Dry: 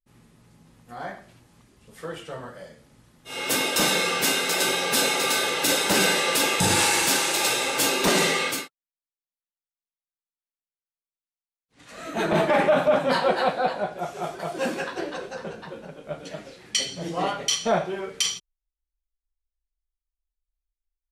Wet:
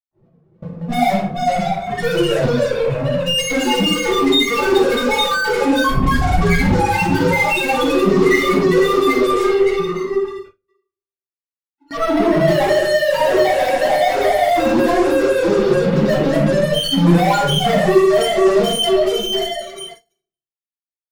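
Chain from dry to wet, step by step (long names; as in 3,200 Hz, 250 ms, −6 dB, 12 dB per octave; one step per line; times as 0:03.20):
one-sided soft clipper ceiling −18 dBFS
parametric band 10,000 Hz −12 dB 0.91 octaves
feedback delay with all-pass diffusion 494 ms, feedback 43%, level −5.5 dB
in parallel at +3 dB: downward compressor 12 to 1, threshold −32 dBFS, peak gain reduction 15.5 dB
on the sum: brickwall limiter −17.5 dBFS, peak gain reduction 10.5 dB
spectral peaks only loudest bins 1
0:05.84–0:06.62: frequency shifter −450 Hz
fuzz pedal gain 49 dB, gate −56 dBFS
rectangular room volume 590 cubic metres, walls furnished, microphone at 9.3 metres
noise gate with hold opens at −9 dBFS
0:11.97–0:12.48: linearly interpolated sample-rate reduction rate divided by 6×
level −13.5 dB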